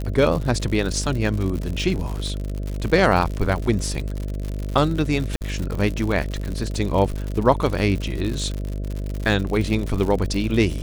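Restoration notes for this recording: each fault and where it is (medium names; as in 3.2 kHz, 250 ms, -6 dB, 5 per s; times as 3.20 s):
buzz 50 Hz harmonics 13 -27 dBFS
crackle 110 per s -26 dBFS
5.36–5.41 s: dropout 49 ms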